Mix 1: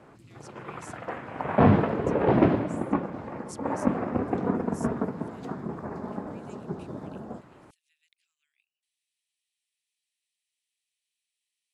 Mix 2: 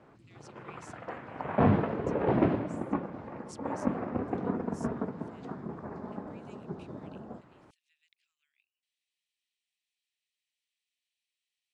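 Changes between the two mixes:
background -5.0 dB; master: add air absorption 70 m

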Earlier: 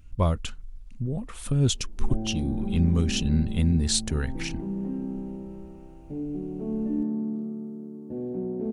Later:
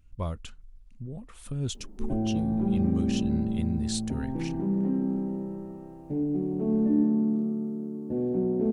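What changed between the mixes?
speech -9.0 dB; background +4.5 dB

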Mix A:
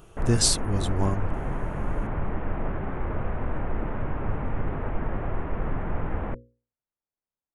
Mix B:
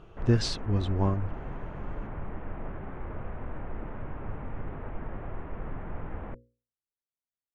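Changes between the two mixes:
speech: add air absorption 220 m; background -8.5 dB

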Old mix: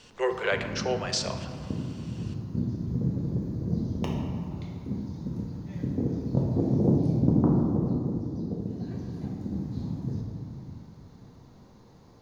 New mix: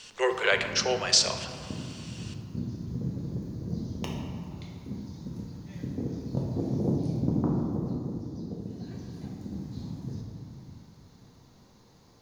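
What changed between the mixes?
background -5.0 dB; master: add high shelf 2000 Hz +10 dB

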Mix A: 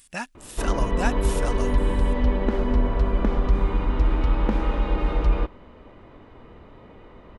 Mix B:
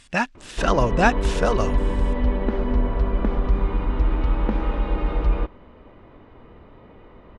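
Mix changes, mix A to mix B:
speech +10.5 dB; master: add air absorption 120 m

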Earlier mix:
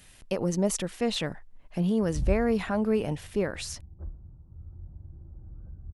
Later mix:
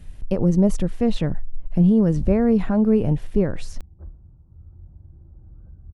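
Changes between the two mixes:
speech: add tilt -4.5 dB/oct; master: add high shelf 5000 Hz +7.5 dB

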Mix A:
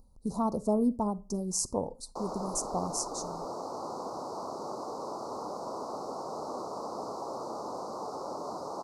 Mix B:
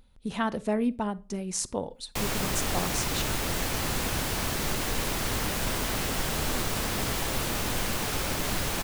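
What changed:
background: remove BPF 430–2400 Hz; master: remove inverse Chebyshev band-stop 1600–3400 Hz, stop band 40 dB

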